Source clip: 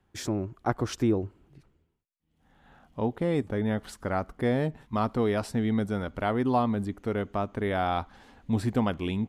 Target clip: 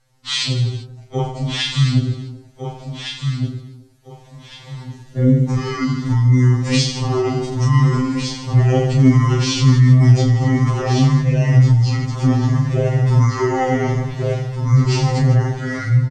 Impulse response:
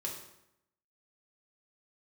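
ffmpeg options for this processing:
-filter_complex "[0:a]bass=frequency=250:gain=5,treble=frequency=4000:gain=14,bandreject=frequency=1200:width=6.4,asplit=2[link_01][link_02];[link_02]aecho=0:1:20|48|87.2|142.1|218.9:0.631|0.398|0.251|0.158|0.1[link_03];[link_01][link_03]amix=inputs=2:normalize=0,dynaudnorm=framelen=810:gausssize=5:maxgain=11.5dB,asplit=2[link_04][link_05];[link_05]aecho=0:1:841|1682|2523:0.422|0.114|0.0307[link_06];[link_04][link_06]amix=inputs=2:normalize=0,acompressor=threshold=-14dB:ratio=4,asetrate=25442,aresample=44100,equalizer=frequency=220:width=1.5:gain=-2.5,alimiter=level_in=12dB:limit=-1dB:release=50:level=0:latency=1,afftfilt=real='re*2.45*eq(mod(b,6),0)':imag='im*2.45*eq(mod(b,6),0)':win_size=2048:overlap=0.75,volume=-4dB"

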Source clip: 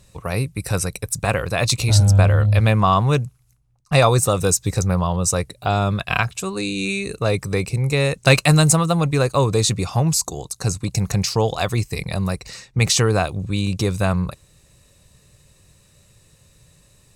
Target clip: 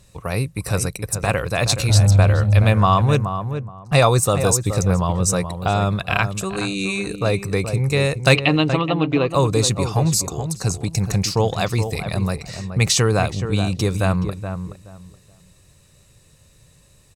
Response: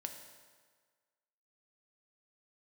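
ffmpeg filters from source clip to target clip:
-filter_complex "[0:a]asplit=3[link_01][link_02][link_03];[link_01]afade=type=out:start_time=8.34:duration=0.02[link_04];[link_02]highpass=120,equalizer=frequency=150:width_type=q:width=4:gain=-8,equalizer=frequency=300:width_type=q:width=4:gain=8,equalizer=frequency=600:width_type=q:width=4:gain=-4,equalizer=frequency=1500:width_type=q:width=4:gain=-9,equalizer=frequency=3000:width_type=q:width=4:gain=9,lowpass=frequency=3400:width=0.5412,lowpass=frequency=3400:width=1.3066,afade=type=in:start_time=8.34:duration=0.02,afade=type=out:start_time=9.3:duration=0.02[link_05];[link_03]afade=type=in:start_time=9.3:duration=0.02[link_06];[link_04][link_05][link_06]amix=inputs=3:normalize=0,asplit=2[link_07][link_08];[link_08]adelay=424,lowpass=frequency=1400:poles=1,volume=-8dB,asplit=2[link_09][link_10];[link_10]adelay=424,lowpass=frequency=1400:poles=1,volume=0.22,asplit=2[link_11][link_12];[link_12]adelay=424,lowpass=frequency=1400:poles=1,volume=0.22[link_13];[link_07][link_09][link_11][link_13]amix=inputs=4:normalize=0"

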